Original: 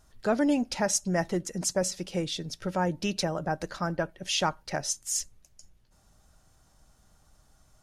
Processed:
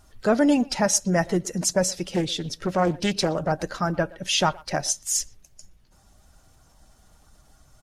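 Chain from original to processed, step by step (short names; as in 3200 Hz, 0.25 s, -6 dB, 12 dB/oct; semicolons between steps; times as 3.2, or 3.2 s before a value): bin magnitudes rounded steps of 15 dB; speakerphone echo 0.12 s, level -21 dB; 2.13–3.52 Doppler distortion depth 0.33 ms; gain +6 dB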